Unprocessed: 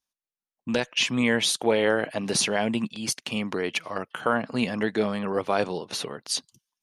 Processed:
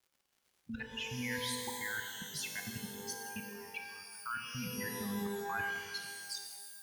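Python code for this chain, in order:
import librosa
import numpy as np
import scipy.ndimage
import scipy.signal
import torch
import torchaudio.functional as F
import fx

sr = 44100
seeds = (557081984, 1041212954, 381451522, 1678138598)

y = fx.bin_expand(x, sr, power=3.0)
y = fx.peak_eq(y, sr, hz=400.0, db=-9.0, octaves=1.9, at=(2.22, 4.52), fade=0.02)
y = scipy.signal.sosfilt(scipy.signal.cheby1(2, 1.0, [150.0, 1600.0], 'bandstop', fs=sr, output='sos'), y)
y = fx.level_steps(y, sr, step_db=23)
y = fx.dmg_crackle(y, sr, seeds[0], per_s=160.0, level_db=-64.0)
y = fx.rev_shimmer(y, sr, seeds[1], rt60_s=1.7, semitones=12, shimmer_db=-2, drr_db=3.5)
y = y * 10.0 ** (5.5 / 20.0)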